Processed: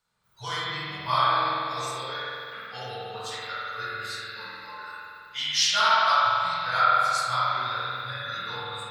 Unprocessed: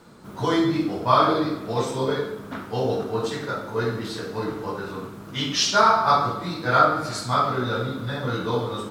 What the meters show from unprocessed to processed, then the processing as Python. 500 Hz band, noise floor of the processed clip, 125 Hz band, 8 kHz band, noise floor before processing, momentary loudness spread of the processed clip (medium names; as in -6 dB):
-12.0 dB, -48 dBFS, -12.5 dB, -1.0 dB, -40 dBFS, 17 LU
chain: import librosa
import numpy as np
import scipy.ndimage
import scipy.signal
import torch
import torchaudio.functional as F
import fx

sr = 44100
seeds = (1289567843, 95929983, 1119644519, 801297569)

y = fx.tone_stack(x, sr, knobs='10-0-10')
y = fx.noise_reduce_blind(y, sr, reduce_db=19)
y = fx.rev_spring(y, sr, rt60_s=2.5, pass_ms=(47,), chirp_ms=40, drr_db=-5.5)